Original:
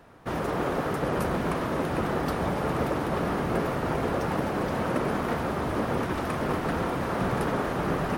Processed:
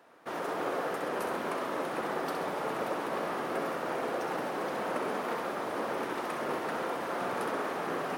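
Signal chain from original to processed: high-pass 350 Hz 12 dB/octave; on a send: flutter echo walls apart 11.2 m, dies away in 0.59 s; on the sum: trim -4.5 dB

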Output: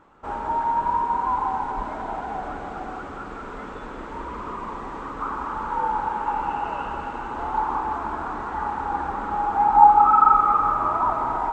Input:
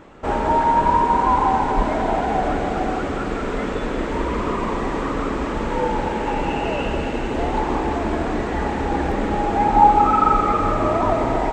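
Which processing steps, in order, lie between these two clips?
high-order bell 1.1 kHz +8 dB 1.1 oct, from 5.20 s +15.5 dB; trim -13.5 dB

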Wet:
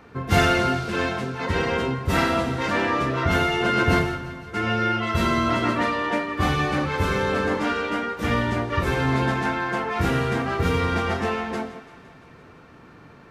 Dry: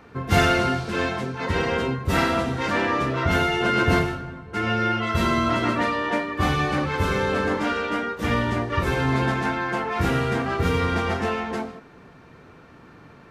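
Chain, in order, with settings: thinning echo 170 ms, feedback 70%, level -17 dB

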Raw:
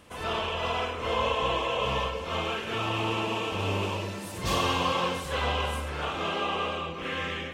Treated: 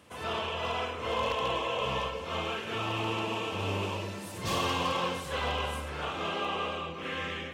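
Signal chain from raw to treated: high-pass 70 Hz 24 dB/octave; wavefolder -19 dBFS; trim -3 dB

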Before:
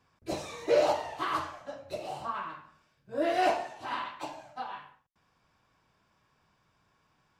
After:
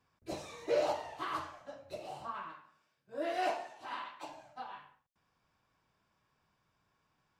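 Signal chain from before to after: 2.52–4.29 s: high-pass 290 Hz 6 dB/octave; trim -6.5 dB

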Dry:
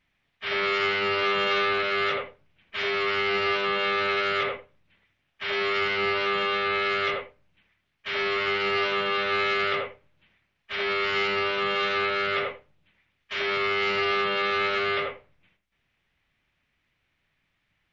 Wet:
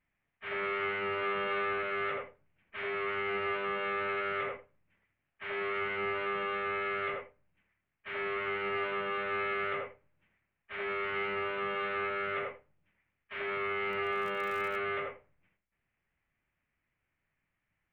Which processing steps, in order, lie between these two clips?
low-pass 2.4 kHz 24 dB/octave; 13.90–14.75 s: crackle 35 per s -> 160 per s -32 dBFS; trim -7.5 dB

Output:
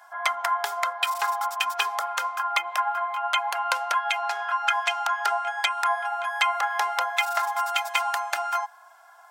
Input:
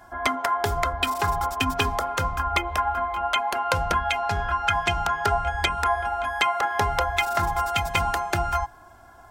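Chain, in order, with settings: high-pass 750 Hz 24 dB/octave

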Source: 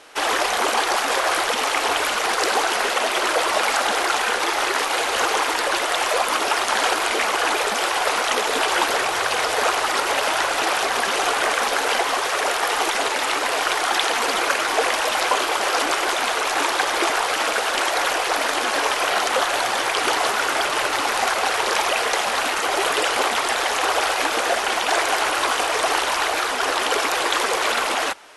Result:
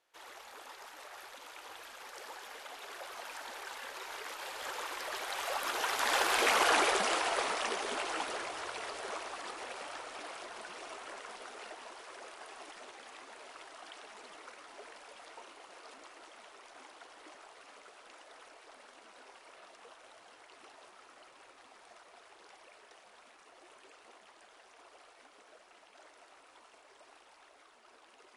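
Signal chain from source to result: Doppler pass-by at 6.63 s, 36 m/s, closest 15 m; trim -6 dB

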